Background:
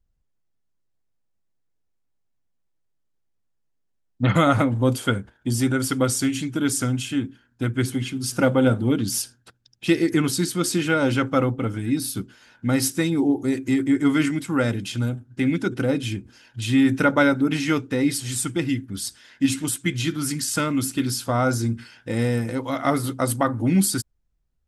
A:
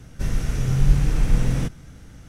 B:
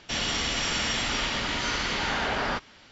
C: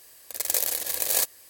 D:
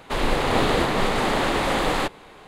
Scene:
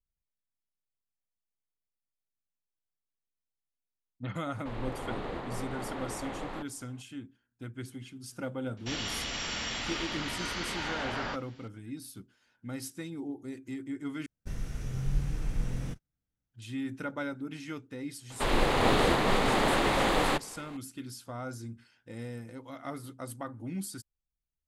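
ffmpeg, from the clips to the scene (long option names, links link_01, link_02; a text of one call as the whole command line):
ffmpeg -i bed.wav -i cue0.wav -i cue1.wav -i cue2.wav -i cue3.wav -filter_complex "[4:a]asplit=2[link_01][link_02];[0:a]volume=-18dB[link_03];[link_01]lowpass=frequency=1600:poles=1[link_04];[1:a]agate=range=-32dB:threshold=-30dB:ratio=16:release=150:detection=peak[link_05];[link_03]asplit=2[link_06][link_07];[link_06]atrim=end=14.264[link_08];[link_05]atrim=end=2.28,asetpts=PTS-STARTPTS,volume=-13dB[link_09];[link_07]atrim=start=16.536[link_10];[link_04]atrim=end=2.47,asetpts=PTS-STARTPTS,volume=-15.5dB,afade=type=in:duration=0.004:curve=hsin,afade=type=out:start_time=2.466:duration=0.004:curve=hsin,adelay=4550[link_11];[2:a]atrim=end=2.91,asetpts=PTS-STARTPTS,volume=-7.5dB,afade=type=in:duration=0.004:curve=hsin,afade=type=out:start_time=2.906:duration=0.004:curve=hsin,adelay=8770[link_12];[link_02]atrim=end=2.47,asetpts=PTS-STARTPTS,volume=-4dB,afade=type=in:duration=0.004:curve=hsin,afade=type=out:start_time=2.466:duration=0.004:curve=hsin,adelay=18300[link_13];[link_08][link_09]acrossfade=duration=0.004:curve1=hsin:curve2=hsin[link_14];[link_14][link_10]acrossfade=duration=0.004:curve1=hsin:curve2=hsin[link_15];[link_15][link_11][link_12][link_13]amix=inputs=4:normalize=0" out.wav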